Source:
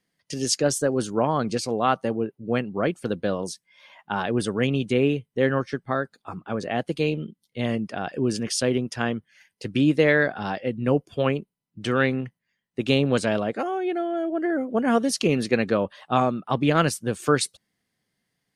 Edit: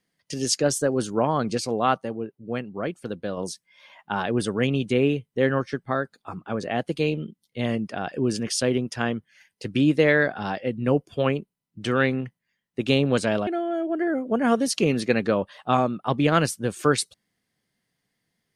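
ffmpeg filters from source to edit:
-filter_complex "[0:a]asplit=4[a][b][c][d];[a]atrim=end=1.982[e];[b]atrim=start=1.978:end=3.372,asetpts=PTS-STARTPTS,volume=-5dB[f];[c]atrim=start=3.368:end=13.472[g];[d]atrim=start=13.898[h];[e][f]acrossfade=d=0.004:c1=hsin:c2=hsin[i];[i][g]acrossfade=d=0.004:c1=hsin:c2=hsin[j];[j][h]acrossfade=d=0.004:c1=hsin:c2=hsin"

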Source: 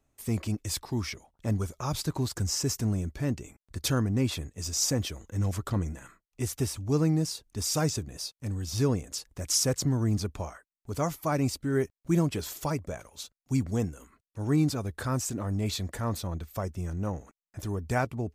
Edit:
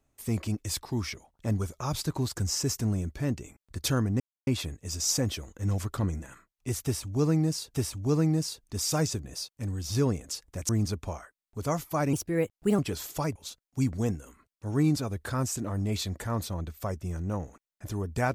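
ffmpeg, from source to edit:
-filter_complex "[0:a]asplit=7[a][b][c][d][e][f][g];[a]atrim=end=4.2,asetpts=PTS-STARTPTS,afade=t=out:st=4.196:d=0.004:c=hsin,apad=pad_dur=0.27[h];[b]atrim=start=4.2:end=7.472,asetpts=PTS-STARTPTS,afade=t=in:d=0.004:c=hsin[i];[c]atrim=start=6.568:end=9.522[j];[d]atrim=start=10.008:end=11.454[k];[e]atrim=start=11.45:end=12.25,asetpts=PTS-STARTPTS,asetrate=53802,aresample=44100,atrim=end_sample=28918,asetpts=PTS-STARTPTS[l];[f]atrim=start=12.246:end=12.822[m];[g]atrim=start=13.088[n];[h][i]concat=n=2:v=0:a=1[o];[o][j]acrossfade=d=0.004:c1=hsin:c2=hsin[p];[p][k]acrossfade=d=0.004:c1=hsin:c2=hsin[q];[q][l]acrossfade=d=0.004:c1=hsin:c2=hsin[r];[r][m]acrossfade=d=0.004:c1=hsin:c2=hsin[s];[s][n]acrossfade=d=0.004:c1=hsin:c2=hsin"

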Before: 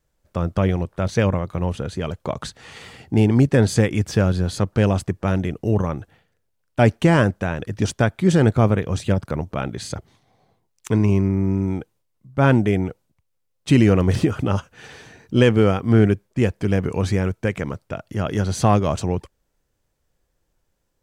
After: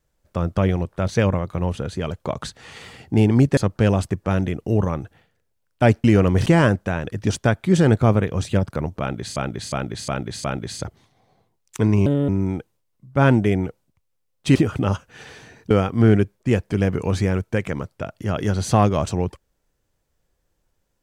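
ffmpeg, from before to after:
-filter_complex "[0:a]asplit=12[a][b][c][d][e][f][g][h][i][j][k][l];[a]atrim=end=3.572[m];[b]atrim=start=4.538:end=7.012[n];[c]atrim=start=13.768:end=14.192[o];[d]atrim=start=7.008:end=9.912[p];[e]atrim=start=9.548:end=9.912[q];[f]atrim=start=9.548:end=9.912[r];[g]atrim=start=9.548:end=9.912[s];[h]atrim=start=9.548:end=11.174[t];[i]atrim=start=11.17:end=11.5,asetpts=PTS-STARTPTS,asetrate=64827,aresample=44100[u];[j]atrim=start=11.496:end=13.772[v];[k]atrim=start=14.188:end=15.342[w];[l]atrim=start=15.608[x];[m][n]acrossfade=d=0.004:c1=hsin:c2=hsin[y];[y][o]acrossfade=d=0.004:c1=hsin:c2=hsin[z];[z][p]acrossfade=d=0.004:c1=hsin:c2=hsin[aa];[aa][q]acrossfade=d=0.004:c1=hsin:c2=hsin[ab];[ab][r]acrossfade=d=0.004:c1=hsin:c2=hsin[ac];[ac][s]acrossfade=d=0.004:c1=hsin:c2=hsin[ad];[ad][t]acrossfade=d=0.004:c1=hsin:c2=hsin[ae];[ae][u]acrossfade=d=0.004:c1=hsin:c2=hsin[af];[af][v]acrossfade=d=0.004:c1=hsin:c2=hsin[ag];[ag][w]acrossfade=d=0.004:c1=hsin:c2=hsin[ah];[ah][x]acrossfade=d=0.004:c1=hsin:c2=hsin"

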